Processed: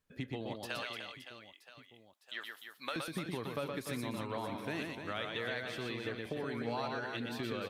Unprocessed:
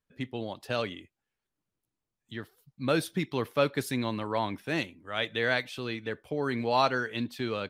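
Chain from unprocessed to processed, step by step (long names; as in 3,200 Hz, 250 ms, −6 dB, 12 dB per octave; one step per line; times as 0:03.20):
0:00.55–0:02.96: high-pass filter 980 Hz 12 dB per octave
downward compressor 6 to 1, threshold −41 dBFS, peak gain reduction 19.5 dB
reverse bouncing-ball delay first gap 120 ms, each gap 1.5×, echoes 5
level +3.5 dB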